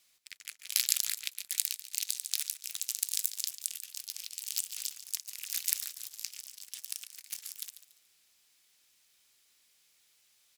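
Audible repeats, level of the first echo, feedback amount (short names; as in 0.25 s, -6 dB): 3, -13.0 dB, 30%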